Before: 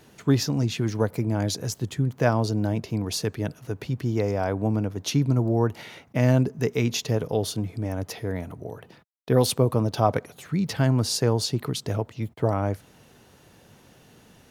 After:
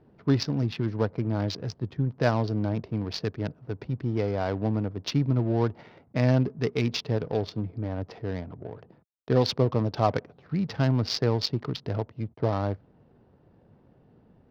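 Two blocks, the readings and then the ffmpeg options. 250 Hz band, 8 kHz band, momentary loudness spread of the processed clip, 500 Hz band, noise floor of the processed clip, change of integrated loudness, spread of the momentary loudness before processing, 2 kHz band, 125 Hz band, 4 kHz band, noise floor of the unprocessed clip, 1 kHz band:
-2.5 dB, -13.5 dB, 10 LU, -2.5 dB, -61 dBFS, -2.5 dB, 10 LU, -3.0 dB, -2.5 dB, -2.5 dB, -55 dBFS, -2.5 dB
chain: -af "adynamicsmooth=sensitivity=4:basefreq=720,highshelf=f=6.5k:t=q:w=3:g=-9.5,volume=-2.5dB"

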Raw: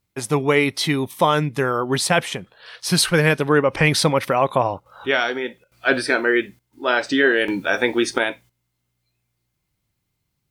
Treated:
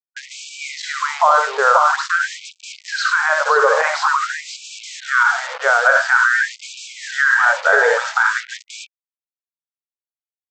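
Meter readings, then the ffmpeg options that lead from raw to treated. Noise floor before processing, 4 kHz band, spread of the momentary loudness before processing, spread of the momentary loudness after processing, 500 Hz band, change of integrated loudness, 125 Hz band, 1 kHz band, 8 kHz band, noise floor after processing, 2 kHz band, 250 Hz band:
-75 dBFS, -3.0 dB, 8 LU, 19 LU, -1.5 dB, +4.0 dB, under -40 dB, +7.5 dB, -1.5 dB, under -85 dBFS, +7.0 dB, under -25 dB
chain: -filter_complex "[0:a]lowpass=5.6k,highshelf=f=1.9k:t=q:w=3:g=-11,asplit=2[a][b];[b]aecho=0:1:64|85|111|533:0.447|0.266|0.15|0.596[c];[a][c]amix=inputs=2:normalize=0,dynaudnorm=f=180:g=5:m=9.5dB,aresample=16000,acrusher=bits=4:mix=0:aa=0.5,aresample=44100,alimiter=level_in=7dB:limit=-1dB:release=50:level=0:latency=1,afftfilt=real='re*gte(b*sr/1024,420*pow(2300/420,0.5+0.5*sin(2*PI*0.48*pts/sr)))':imag='im*gte(b*sr/1024,420*pow(2300/420,0.5+0.5*sin(2*PI*0.48*pts/sr)))':win_size=1024:overlap=0.75,volume=-1dB"

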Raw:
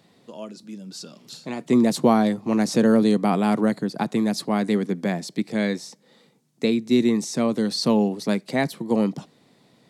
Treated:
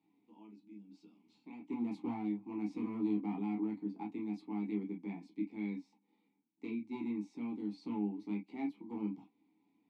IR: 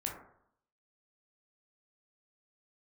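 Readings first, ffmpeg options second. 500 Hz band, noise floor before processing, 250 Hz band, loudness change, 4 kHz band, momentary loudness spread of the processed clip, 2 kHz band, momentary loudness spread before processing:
-24.5 dB, -60 dBFS, -16.0 dB, -17.5 dB, under -30 dB, 16 LU, -23.0 dB, 20 LU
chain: -filter_complex "[0:a]asoftclip=type=hard:threshold=-13.5dB,asplit=3[a][b][c];[a]bandpass=f=300:t=q:w=8,volume=0dB[d];[b]bandpass=f=870:t=q:w=8,volume=-6dB[e];[c]bandpass=f=2.24k:t=q:w=8,volume=-9dB[f];[d][e][f]amix=inputs=3:normalize=0[g];[1:a]atrim=start_sample=2205,atrim=end_sample=3969,asetrate=74970,aresample=44100[h];[g][h]afir=irnorm=-1:irlink=0,volume=-3dB"

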